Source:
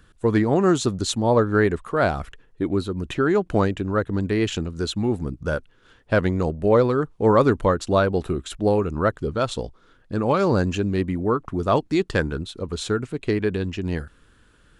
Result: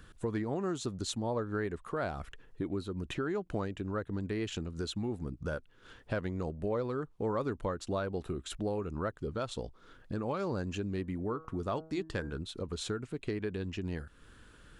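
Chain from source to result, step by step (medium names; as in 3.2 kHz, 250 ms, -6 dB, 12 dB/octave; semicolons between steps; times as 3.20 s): compression 2.5:1, threshold -39 dBFS, peak gain reduction 17.5 dB; 11.00–12.37 s: de-hum 159.8 Hz, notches 11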